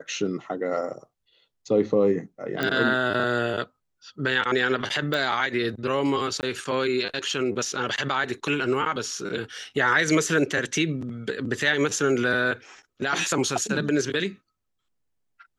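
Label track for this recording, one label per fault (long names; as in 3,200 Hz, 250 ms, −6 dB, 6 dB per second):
2.630000	2.630000	click −12 dBFS
5.140000	5.140000	click
6.410000	6.430000	drop-out 19 ms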